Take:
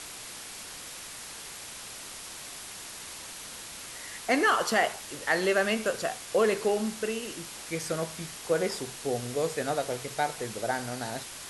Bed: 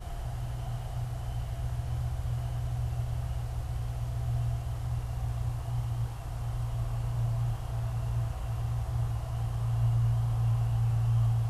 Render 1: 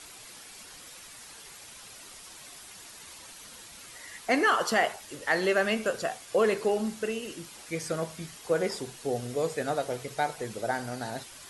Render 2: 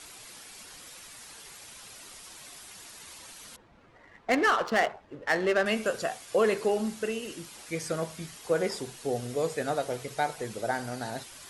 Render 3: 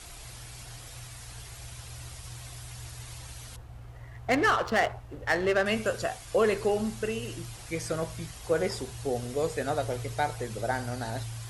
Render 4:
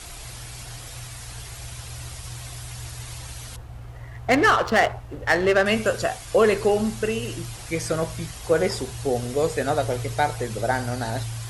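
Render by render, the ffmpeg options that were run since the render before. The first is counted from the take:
-af "afftdn=nr=8:nf=-43"
-filter_complex "[0:a]asettb=1/sr,asplit=3[s0][s1][s2];[s0]atrim=end=3.564[s3];[s1]atrim=start=3.56:end=5.66,asetpts=PTS-STARTPTS,afade=t=in:d=0.004:c=qsin,afade=t=out:st=2.096:d=0.004:c=qsin,adynamicsmooth=sensitivity=3:basefreq=1000[s4];[s2]atrim=start=5.656[s5];[s3][s4]acrossfade=d=0.004:c1=hsin:c2=qsin[s6];[s6][s5]acrossfade=d=0.004:c1=qsin:c2=hsin"
-filter_complex "[1:a]volume=0.251[s0];[0:a][s0]amix=inputs=2:normalize=0"
-af "volume=2.11"

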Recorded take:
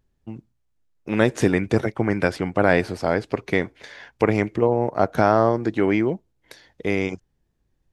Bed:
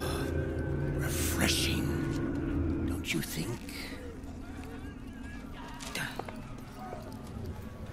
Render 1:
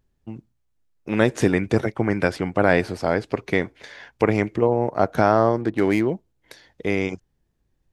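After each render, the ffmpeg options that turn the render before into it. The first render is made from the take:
-filter_complex "[0:a]asettb=1/sr,asplit=3[s0][s1][s2];[s0]atrim=end=5.614[s3];[s1]atrim=start=5.61:end=6.07,asetpts=PTS-STARTPTS,afade=t=in:d=0.004:c=qsin,afade=t=out:st=0.456:d=0.004:c=qsin,adynamicsmooth=sensitivity=7:basefreq=1500[s4];[s2]atrim=start=6.066[s5];[s3][s4]acrossfade=d=0.004:c1=hsin:c2=qsin[s6];[s6][s5]acrossfade=d=0.004:c1=qsin:c2=hsin"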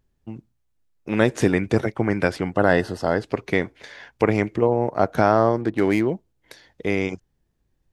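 -filter_complex "[0:a]asettb=1/sr,asplit=3[s0][s1][s2];[s0]atrim=end=2.524[s3];[s1]atrim=start=2.52:end=3.23,asetpts=PTS-STARTPTS,afade=t=in:d=0.004:c=qsin,afade=t=out:st=0.706:d=0.004:c=qsin,asuperstop=centerf=2300:order=8:qfactor=5.3[s4];[s2]atrim=start=3.226[s5];[s3][s4]acrossfade=d=0.004:c1=hsin:c2=qsin[s6];[s6][s5]acrossfade=d=0.004:c1=qsin:c2=hsin"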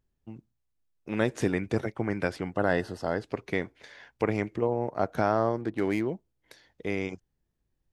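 -af "volume=0.398"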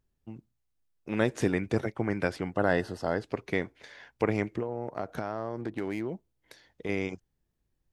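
-filter_complex "[0:a]asettb=1/sr,asplit=3[s0][s1][s2];[s0]atrim=end=4.604[s3];[s1]atrim=start=4.6:end=6.89,asetpts=PTS-STARTPTS,afade=t=in:d=0.004:c=qsin,afade=t=out:st=2.286:d=0.004:c=qsin,acompressor=threshold=0.0398:ratio=6:attack=3.2:release=140:knee=1:detection=peak[s4];[s2]atrim=start=6.886[s5];[s3][s4]acrossfade=d=0.004:c1=hsin:c2=qsin[s6];[s6][s5]acrossfade=d=0.004:c1=qsin:c2=hsin"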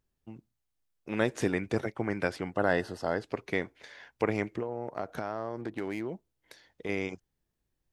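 -af "lowshelf=f=270:g=-4.5"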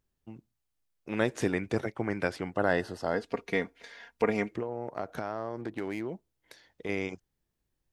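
-filter_complex "[0:a]asettb=1/sr,asplit=3[s0][s1][s2];[s0]atrim=end=3.134[s3];[s1]atrim=start=3.13:end=4.51,asetpts=PTS-STARTPTS,afade=t=in:d=0.004:c=qsin,afade=t=out:st=1.376:d=0.004:c=qsin,aecho=1:1:4.3:0.58,atrim=end_sample=60858[s4];[s2]atrim=start=4.506[s5];[s3][s4]acrossfade=d=0.004:c1=hsin:c2=qsin[s6];[s6][s5]acrossfade=d=0.004:c1=qsin:c2=hsin"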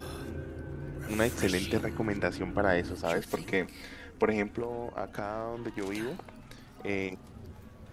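-filter_complex "[1:a]volume=0.447[s0];[0:a][s0]amix=inputs=2:normalize=0"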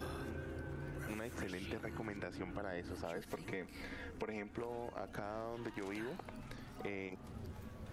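-filter_complex "[0:a]alimiter=limit=0.0794:level=0:latency=1:release=196,acrossover=split=680|2500[s0][s1][s2];[s0]acompressor=threshold=0.00708:ratio=4[s3];[s1]acompressor=threshold=0.00398:ratio=4[s4];[s2]acompressor=threshold=0.001:ratio=4[s5];[s3][s4][s5]amix=inputs=3:normalize=0"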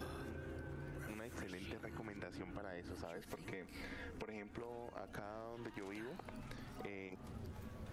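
-af "acompressor=threshold=0.00631:ratio=6"

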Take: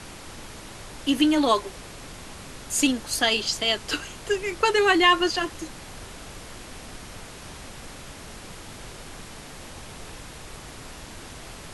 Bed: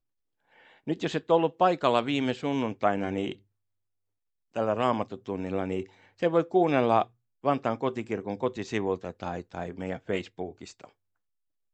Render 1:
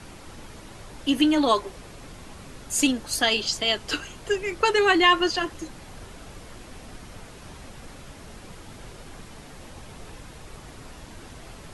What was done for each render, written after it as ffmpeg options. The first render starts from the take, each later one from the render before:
-af "afftdn=nr=6:nf=-42"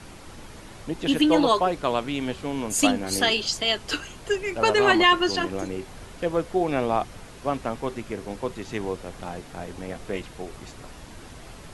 -filter_complex "[1:a]volume=0.891[s0];[0:a][s0]amix=inputs=2:normalize=0"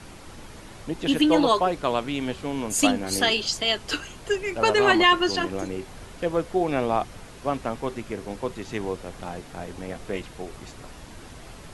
-af anull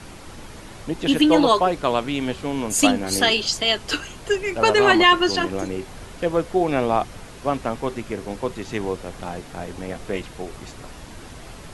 -af "volume=1.5,alimiter=limit=0.708:level=0:latency=1"

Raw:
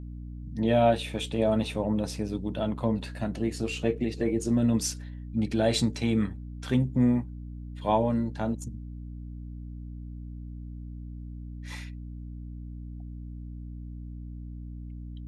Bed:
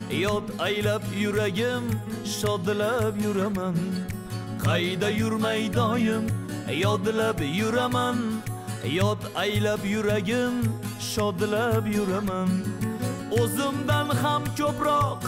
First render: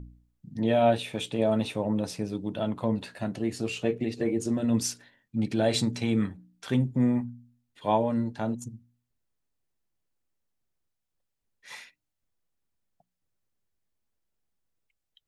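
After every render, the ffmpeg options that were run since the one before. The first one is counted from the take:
-af "bandreject=f=60:t=h:w=4,bandreject=f=120:t=h:w=4,bandreject=f=180:t=h:w=4,bandreject=f=240:t=h:w=4,bandreject=f=300:t=h:w=4"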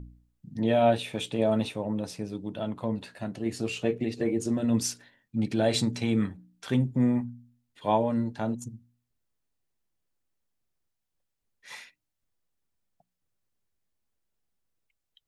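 -filter_complex "[0:a]asplit=3[s0][s1][s2];[s0]atrim=end=1.692[s3];[s1]atrim=start=1.688:end=3.462,asetpts=PTS-STARTPTS,volume=0.708[s4];[s2]atrim=start=3.458[s5];[s3][s4]acrossfade=d=0.004:c1=hsin:c2=hsin[s6];[s6][s5]acrossfade=d=0.004:c1=hsin:c2=hsin"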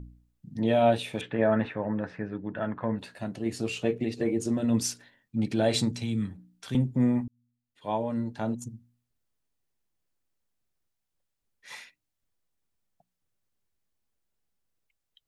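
-filter_complex "[0:a]asettb=1/sr,asplit=3[s0][s1][s2];[s0]atrim=end=1.214[s3];[s1]atrim=start=1.21:end=2.99,asetpts=PTS-STARTPTS,afade=t=in:d=0.004:c=qsin,afade=t=out:st=1.776:d=0.004:c=qsin,lowpass=f=1700:t=q:w=6.8[s4];[s2]atrim=start=2.986[s5];[s3][s4]acrossfade=d=0.004:c1=hsin:c2=qsin[s6];[s6][s5]acrossfade=d=0.004:c1=qsin:c2=hsin,asettb=1/sr,asplit=3[s7][s8][s9];[s7]atrim=end=5.914[s10];[s8]atrim=start=5.91:end=6.75,asetpts=PTS-STARTPTS,afade=t=in:d=0.004:c=qsin,afade=t=out:st=0.836:d=0.004:c=qsin,acrossover=split=230|3000[s11][s12][s13];[s12]acompressor=threshold=0.00398:ratio=2.5:attack=3.2:release=140:knee=2.83:detection=peak[s14];[s11][s14][s13]amix=inputs=3:normalize=0[s15];[s9]atrim=start=6.746[s16];[s10][s15]acrossfade=d=0.004:c1=hsin:c2=qsin[s17];[s17][s16]acrossfade=d=0.004:c1=qsin:c2=hsin,asplit=2[s18][s19];[s18]atrim=end=7.28,asetpts=PTS-STARTPTS,afade=t=out:st=7.276:d=0.004:c=hsin[s20];[s19]atrim=start=7.28,asetpts=PTS-STARTPTS,afade=t=in:d=1.24[s21];[s20][s21]concat=n=2:v=0:a=1"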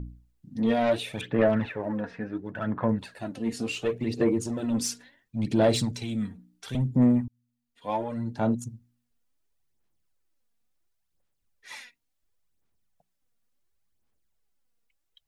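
-af "asoftclip=type=tanh:threshold=0.1,aphaser=in_gain=1:out_gain=1:delay=4.3:decay=0.53:speed=0.71:type=sinusoidal"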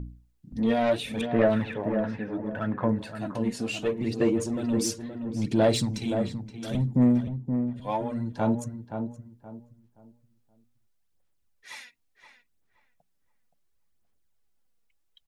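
-filter_complex "[0:a]asplit=2[s0][s1];[s1]adelay=523,lowpass=f=1500:p=1,volume=0.447,asplit=2[s2][s3];[s3]adelay=523,lowpass=f=1500:p=1,volume=0.29,asplit=2[s4][s5];[s5]adelay=523,lowpass=f=1500:p=1,volume=0.29,asplit=2[s6][s7];[s7]adelay=523,lowpass=f=1500:p=1,volume=0.29[s8];[s0][s2][s4][s6][s8]amix=inputs=5:normalize=0"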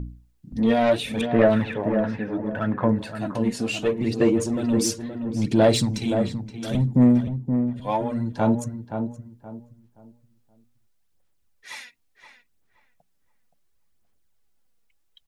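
-af "volume=1.68"

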